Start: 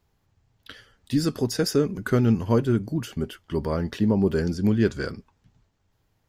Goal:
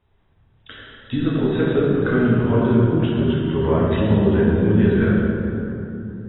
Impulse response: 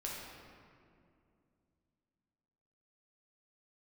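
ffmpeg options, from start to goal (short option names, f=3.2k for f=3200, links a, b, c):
-filter_complex "[0:a]acompressor=threshold=-21dB:ratio=6[a];[1:a]atrim=start_sample=2205,asetrate=30870,aresample=44100[b];[a][b]afir=irnorm=-1:irlink=0,volume=5dB" -ar 22050 -c:a aac -b:a 16k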